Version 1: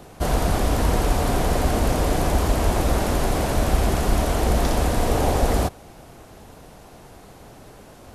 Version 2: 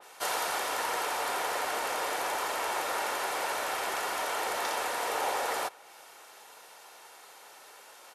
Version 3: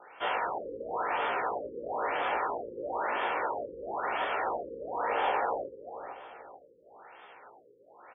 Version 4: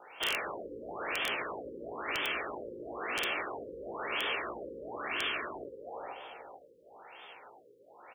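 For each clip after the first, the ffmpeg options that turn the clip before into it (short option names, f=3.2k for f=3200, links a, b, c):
-af "highpass=1k,aecho=1:1:2.2:0.32,adynamicequalizer=threshold=0.00355:dfrequency=2900:dqfactor=0.7:tfrequency=2900:tqfactor=0.7:attack=5:release=100:ratio=0.375:range=3:mode=cutabove:tftype=highshelf"
-filter_complex "[0:a]asplit=2[a][b];[b]adelay=17,volume=-3dB[c];[a][c]amix=inputs=2:normalize=0,asplit=2[d][e];[e]adelay=441,lowpass=f=1.1k:p=1,volume=-9dB,asplit=2[f][g];[g]adelay=441,lowpass=f=1.1k:p=1,volume=0.42,asplit=2[h][i];[i]adelay=441,lowpass=f=1.1k:p=1,volume=0.42,asplit=2[j][k];[k]adelay=441,lowpass=f=1.1k:p=1,volume=0.42,asplit=2[l][m];[m]adelay=441,lowpass=f=1.1k:p=1,volume=0.42[n];[d][f][h][j][l][n]amix=inputs=6:normalize=0,afftfilt=real='re*lt(b*sr/1024,530*pow(3600/530,0.5+0.5*sin(2*PI*1*pts/sr)))':imag='im*lt(b*sr/1024,530*pow(3600/530,0.5+0.5*sin(2*PI*1*pts/sr)))':win_size=1024:overlap=0.75"
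-af "afftfilt=real='re*lt(hypot(re,im),0.0891)':imag='im*lt(hypot(re,im),0.0891)':win_size=1024:overlap=0.75,highshelf=f=2.2k:t=q:w=1.5:g=6.5,aeval=exprs='(mod(13.3*val(0)+1,2)-1)/13.3':c=same"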